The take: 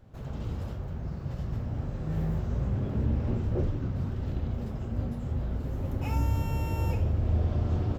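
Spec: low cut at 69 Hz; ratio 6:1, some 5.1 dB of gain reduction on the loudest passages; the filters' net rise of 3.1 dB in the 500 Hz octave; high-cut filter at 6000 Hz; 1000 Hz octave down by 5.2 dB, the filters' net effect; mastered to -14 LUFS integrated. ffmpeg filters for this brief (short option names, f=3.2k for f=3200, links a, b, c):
-af "highpass=69,lowpass=6k,equalizer=f=500:t=o:g=6,equalizer=f=1k:t=o:g=-9,acompressor=threshold=-29dB:ratio=6,volume=21.5dB"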